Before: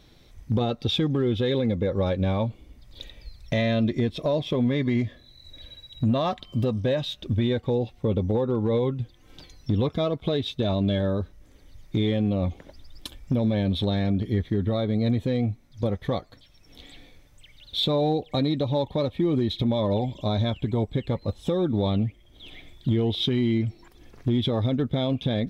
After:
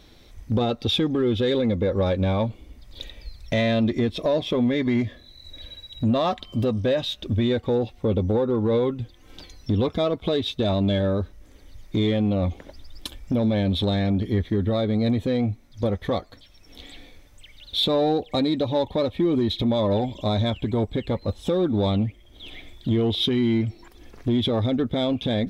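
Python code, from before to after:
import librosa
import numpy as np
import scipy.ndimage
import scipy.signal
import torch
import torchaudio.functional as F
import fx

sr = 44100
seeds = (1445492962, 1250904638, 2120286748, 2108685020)

p1 = fx.peak_eq(x, sr, hz=140.0, db=-11.5, octaves=0.33)
p2 = 10.0 ** (-23.5 / 20.0) * np.tanh(p1 / 10.0 ** (-23.5 / 20.0))
y = p1 + F.gain(torch.from_numpy(p2), -4.5).numpy()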